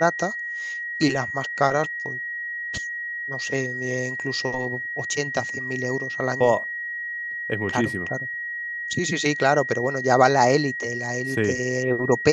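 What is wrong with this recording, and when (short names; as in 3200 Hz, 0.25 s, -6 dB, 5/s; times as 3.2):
tone 1900 Hz -28 dBFS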